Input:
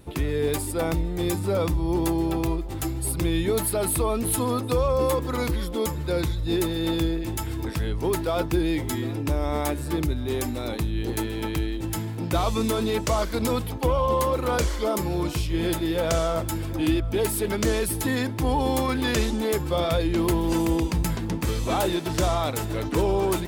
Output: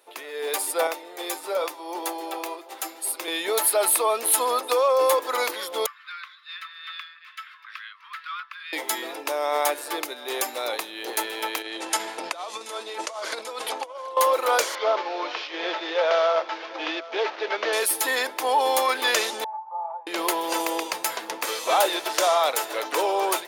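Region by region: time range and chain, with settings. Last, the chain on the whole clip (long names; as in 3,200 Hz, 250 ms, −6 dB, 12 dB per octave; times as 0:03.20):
0:00.87–0:03.28: Butterworth high-pass 200 Hz + flanger 1 Hz, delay 3.3 ms, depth 6.6 ms, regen −70%
0:05.86–0:08.73: Butterworth high-pass 1,100 Hz 96 dB per octave + high-frequency loss of the air 360 metres + two-band tremolo in antiphase 2.3 Hz, depth 50%, crossover 1,200 Hz
0:11.62–0:14.17: low-pass filter 10,000 Hz 24 dB per octave + compressor whose output falls as the input rises −29 dBFS, ratio −0.5 + single-tap delay 730 ms −20 dB
0:14.75–0:17.73: variable-slope delta modulation 32 kbit/s + band-pass filter 290–3,700 Hz
0:19.44–0:20.07: flat-topped band-pass 880 Hz, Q 5.1 + high-frequency loss of the air 270 metres + comb filter 3.4 ms, depth 61%
whole clip: high-pass filter 530 Hz 24 dB per octave; notch filter 7,800 Hz, Q 13; automatic gain control gain up to 8.5 dB; level −2 dB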